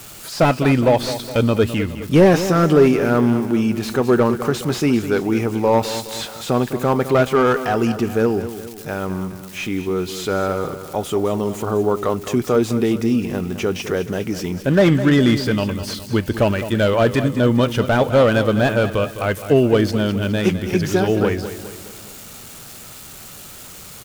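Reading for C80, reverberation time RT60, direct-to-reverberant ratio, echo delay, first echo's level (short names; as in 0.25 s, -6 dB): none, none, none, 0.208 s, -12.0 dB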